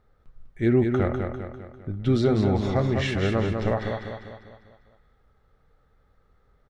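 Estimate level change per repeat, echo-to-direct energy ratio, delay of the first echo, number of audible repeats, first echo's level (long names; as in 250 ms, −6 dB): −6.0 dB, −4.0 dB, 199 ms, 5, −5.0 dB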